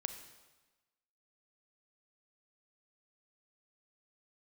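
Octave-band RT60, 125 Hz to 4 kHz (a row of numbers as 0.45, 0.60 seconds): 1.1, 1.2, 1.2, 1.2, 1.1, 1.1 seconds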